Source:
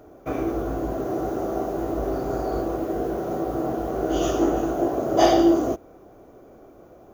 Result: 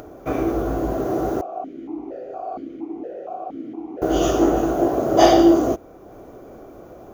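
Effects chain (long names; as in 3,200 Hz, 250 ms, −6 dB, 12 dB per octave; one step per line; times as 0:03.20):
upward compression, threshold −39 dBFS
0:01.41–0:04.02: formant filter that steps through the vowels 4.3 Hz
level +4 dB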